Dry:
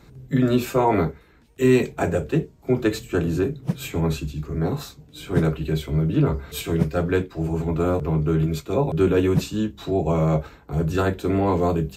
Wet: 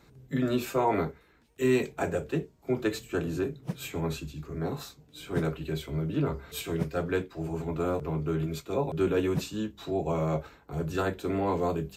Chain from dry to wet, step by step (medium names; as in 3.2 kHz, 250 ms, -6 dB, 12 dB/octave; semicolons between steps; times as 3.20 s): bass shelf 230 Hz -6.5 dB; trim -5.5 dB